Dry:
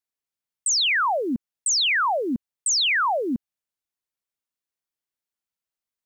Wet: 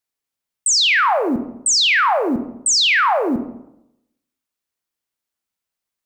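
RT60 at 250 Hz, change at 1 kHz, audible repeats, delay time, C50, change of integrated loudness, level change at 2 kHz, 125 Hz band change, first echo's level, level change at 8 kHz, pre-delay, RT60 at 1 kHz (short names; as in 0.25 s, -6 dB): 0.85 s, +6.5 dB, none, none, 10.0 dB, +6.0 dB, +6.0 dB, +6.5 dB, none, +6.0 dB, 26 ms, 0.80 s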